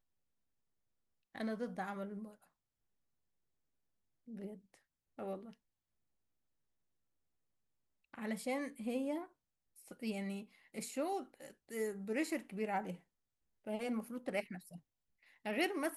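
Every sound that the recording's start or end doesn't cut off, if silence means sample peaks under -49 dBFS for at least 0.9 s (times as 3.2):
1.35–2.31
4.28–5.53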